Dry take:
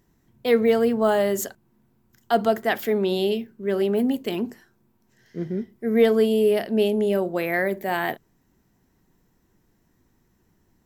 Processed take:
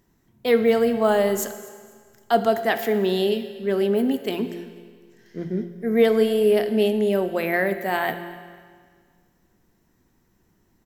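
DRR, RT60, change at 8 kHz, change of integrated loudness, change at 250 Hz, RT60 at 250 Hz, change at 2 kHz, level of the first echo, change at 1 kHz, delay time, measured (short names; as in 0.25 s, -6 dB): 9.0 dB, 1.7 s, n/a, +1.0 dB, +0.5 dB, 1.7 s, +1.5 dB, -21.0 dB, +1.5 dB, 0.246 s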